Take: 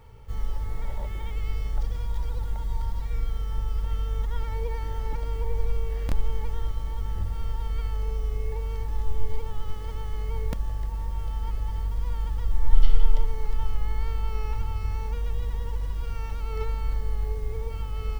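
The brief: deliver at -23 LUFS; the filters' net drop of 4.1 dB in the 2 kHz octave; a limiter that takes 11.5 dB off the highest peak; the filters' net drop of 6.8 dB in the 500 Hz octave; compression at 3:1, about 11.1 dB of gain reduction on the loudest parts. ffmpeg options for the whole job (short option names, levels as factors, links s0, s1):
-af "equalizer=f=500:t=o:g=-7.5,equalizer=f=2000:t=o:g=-4.5,acompressor=threshold=0.0794:ratio=3,volume=5.01,alimiter=limit=0.266:level=0:latency=1"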